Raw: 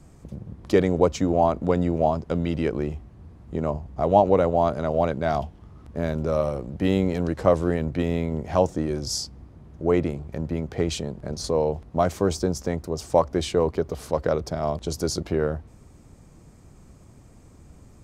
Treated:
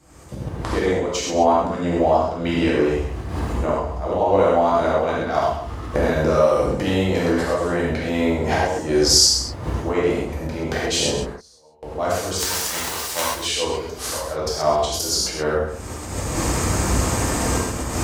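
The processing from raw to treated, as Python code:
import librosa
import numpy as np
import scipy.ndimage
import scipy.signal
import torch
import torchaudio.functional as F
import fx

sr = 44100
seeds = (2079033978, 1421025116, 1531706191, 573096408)

p1 = fx.envelope_flatten(x, sr, power=0.3, at=(12.37, 13.26), fade=0.02)
p2 = fx.recorder_agc(p1, sr, target_db=-10.0, rise_db_per_s=42.0, max_gain_db=30)
p3 = fx.auto_swell(p2, sr, attack_ms=129.0)
p4 = fx.highpass(p3, sr, hz=120.0, slope=6)
p5 = p4 + fx.echo_single(p4, sr, ms=135, db=-10.5, dry=0)
p6 = fx.gate_flip(p5, sr, shuts_db=-25.0, range_db=-34, at=(11.25, 11.83))
p7 = fx.peak_eq(p6, sr, hz=190.0, db=-9.0, octaves=2.1)
y = fx.rev_gated(p7, sr, seeds[0], gate_ms=150, shape='flat', drr_db=-6.5)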